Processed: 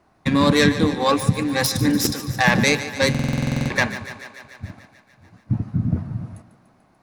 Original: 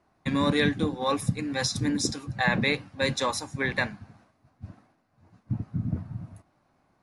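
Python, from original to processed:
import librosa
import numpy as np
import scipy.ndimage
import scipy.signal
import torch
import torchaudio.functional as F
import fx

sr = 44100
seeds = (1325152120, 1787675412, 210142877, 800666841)

y = fx.self_delay(x, sr, depth_ms=0.095)
y = fx.echo_thinned(y, sr, ms=146, feedback_pct=71, hz=190.0, wet_db=-13.5)
y = fx.buffer_glitch(y, sr, at_s=(3.1,), block=2048, repeats=12)
y = y * librosa.db_to_amplitude(8.0)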